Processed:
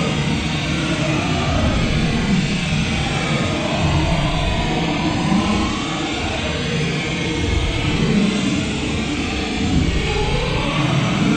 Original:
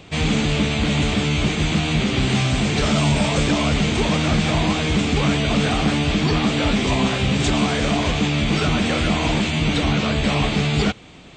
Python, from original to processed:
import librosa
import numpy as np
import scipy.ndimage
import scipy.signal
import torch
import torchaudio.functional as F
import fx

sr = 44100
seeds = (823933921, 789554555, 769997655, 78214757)

y = fx.rattle_buzz(x, sr, strikes_db=-21.0, level_db=-21.0)
y = fx.paulstretch(y, sr, seeds[0], factor=10.0, window_s=0.05, from_s=4.16)